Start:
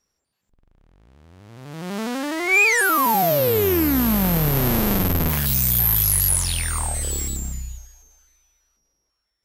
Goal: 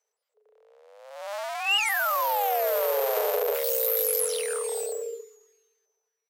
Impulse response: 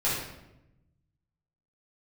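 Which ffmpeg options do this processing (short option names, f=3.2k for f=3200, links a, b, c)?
-af "lowshelf=f=100:g=3.5,atempo=1.5,afreqshift=400,volume=-7dB"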